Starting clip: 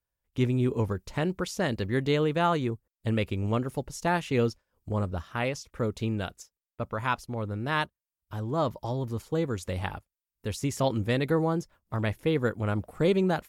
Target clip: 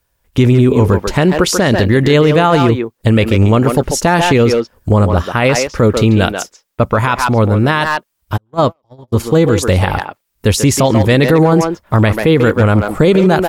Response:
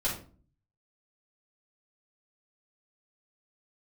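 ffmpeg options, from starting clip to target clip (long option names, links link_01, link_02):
-filter_complex "[0:a]asplit=2[link_01][link_02];[link_02]adelay=140,highpass=300,lowpass=3400,asoftclip=type=hard:threshold=-21.5dB,volume=-7dB[link_03];[link_01][link_03]amix=inputs=2:normalize=0,asplit=3[link_04][link_05][link_06];[link_04]afade=type=out:start_time=8.36:duration=0.02[link_07];[link_05]agate=range=-50dB:threshold=-25dB:ratio=16:detection=peak,afade=type=in:start_time=8.36:duration=0.02,afade=type=out:start_time=9.12:duration=0.02[link_08];[link_06]afade=type=in:start_time=9.12:duration=0.02[link_09];[link_07][link_08][link_09]amix=inputs=3:normalize=0,alimiter=level_in=22.5dB:limit=-1dB:release=50:level=0:latency=1,volume=-1dB"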